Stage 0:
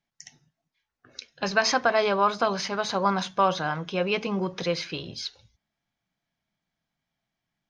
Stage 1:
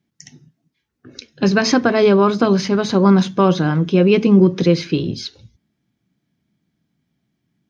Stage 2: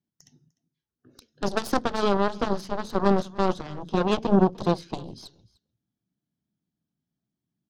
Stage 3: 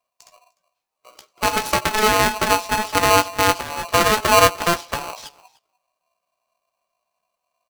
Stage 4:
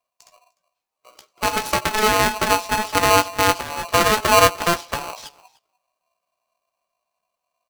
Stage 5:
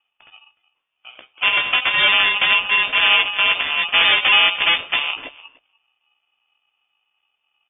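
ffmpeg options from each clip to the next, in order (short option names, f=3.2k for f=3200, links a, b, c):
-af "highpass=79,lowshelf=f=480:t=q:w=1.5:g=12,volume=4.5dB"
-af "aeval=exprs='0.891*(cos(1*acos(clip(val(0)/0.891,-1,1)))-cos(1*PI/2))+0.224*(cos(3*acos(clip(val(0)/0.891,-1,1)))-cos(3*PI/2))+0.0708*(cos(7*acos(clip(val(0)/0.891,-1,1)))-cos(7*PI/2))+0.0316*(cos(8*acos(clip(val(0)/0.891,-1,1)))-cos(8*PI/2))':c=same,equalizer=f=2.2k:w=2.2:g=-11.5,aecho=1:1:300:0.0708,volume=-4dB"
-filter_complex "[0:a]alimiter=limit=-11.5dB:level=0:latency=1:release=78,asplit=2[a][b];[b]adelay=16,volume=-6.5dB[c];[a][c]amix=inputs=2:normalize=0,aeval=exprs='val(0)*sgn(sin(2*PI*860*n/s))':c=same,volume=6dB"
-af "dynaudnorm=f=340:g=11:m=11.5dB,volume=-2dB"
-af "asoftclip=type=tanh:threshold=-18.5dB,lowpass=f=3.1k:t=q:w=0.5098,lowpass=f=3.1k:t=q:w=0.6013,lowpass=f=3.1k:t=q:w=0.9,lowpass=f=3.1k:t=q:w=2.563,afreqshift=-3600,volume=9dB"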